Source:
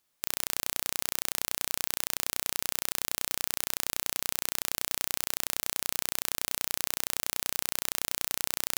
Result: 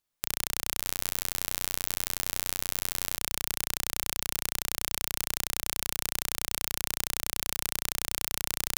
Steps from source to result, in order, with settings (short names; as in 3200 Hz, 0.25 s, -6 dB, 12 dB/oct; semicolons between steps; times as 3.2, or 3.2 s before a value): 0.75–3.18 flutter echo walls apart 7.5 m, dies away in 0.23 s; transient shaper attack +9 dB, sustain -11 dB; low shelf 88 Hz +11.5 dB; gain -8.5 dB